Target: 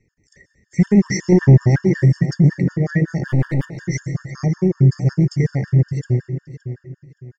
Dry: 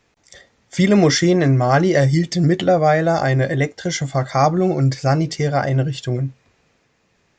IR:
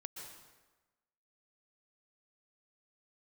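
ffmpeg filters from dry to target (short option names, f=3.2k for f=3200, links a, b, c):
-filter_complex "[0:a]firequalizer=gain_entry='entry(170,0);entry(250,-6);entry(390,-5);entry(670,-24);entry(1200,-26);entry(1900,-4);entry(3400,-29);entry(5300,-10);entry(9900,-17)':delay=0.05:min_phase=1,asettb=1/sr,asplit=3[a][b][c];[a]atrim=end=1.324[d];[b]atrim=start=1.32:end=1.76,asetpts=PTS-STARTPTS,afade=t=in:d=0.004:c=qsin,afade=t=out:st=0.436:d=0.004:c=qsin,acontrast=28[e];[c]atrim=start=1.756[f];[d][e]acrossfade=d=0.004:c1=hsin:c2=qsin[g];[g][f]acrossfade=d=0.004:c1=qsin:c2=hsin,asplit=2[h][i];[i]adelay=569,lowpass=f=3.9k:p=1,volume=-11.5dB,asplit=2[j][k];[k]adelay=569,lowpass=f=3.9k:p=1,volume=0.33,asplit=2[l][m];[m]adelay=569,lowpass=f=3.9k:p=1,volume=0.33[n];[h][j][l][n]amix=inputs=4:normalize=0,asplit=3[o][p][q];[o]afade=t=out:st=3.27:d=0.02[r];[p]aeval=exprs='clip(val(0),-1,0.0355)':c=same,afade=t=in:st=3.27:d=0.02,afade=t=out:st=3.8:d=0.02[s];[q]afade=t=in:st=3.8:d=0.02[t];[r][s][t]amix=inputs=3:normalize=0,acontrast=77,asplit=2[u][v];[v]asuperstop=centerf=3200:order=20:qfactor=7.7[w];[1:a]atrim=start_sample=2205[x];[w][x]afir=irnorm=-1:irlink=0,volume=-3dB[y];[u][y]amix=inputs=2:normalize=0,afftfilt=real='re*gt(sin(2*PI*5.4*pts/sr)*(1-2*mod(floor(b*sr/1024/910),2)),0)':imag='im*gt(sin(2*PI*5.4*pts/sr)*(1-2*mod(floor(b*sr/1024/910),2)),0)':win_size=1024:overlap=0.75,volume=-3.5dB"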